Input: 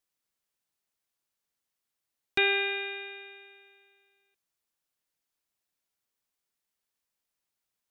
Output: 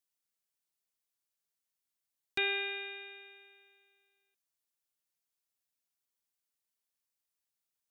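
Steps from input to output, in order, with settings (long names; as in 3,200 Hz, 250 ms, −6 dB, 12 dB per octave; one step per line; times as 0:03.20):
high-shelf EQ 3,900 Hz +7 dB
level −8.5 dB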